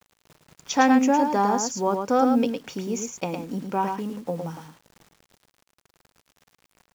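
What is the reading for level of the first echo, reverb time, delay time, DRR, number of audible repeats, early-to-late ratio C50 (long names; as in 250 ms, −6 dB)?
−5.5 dB, no reverb audible, 109 ms, no reverb audible, 1, no reverb audible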